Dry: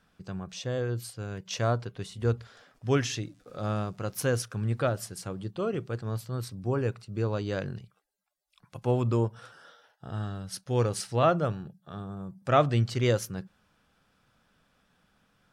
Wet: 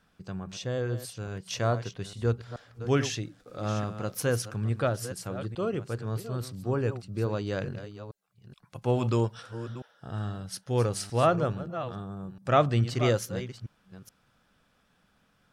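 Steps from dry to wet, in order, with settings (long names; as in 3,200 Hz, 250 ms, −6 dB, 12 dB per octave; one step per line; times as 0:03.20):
delay that plays each chunk backwards 427 ms, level −11.5 dB
0:08.84–0:09.41: parametric band 4,200 Hz +2.5 dB → +13 dB 2.3 octaves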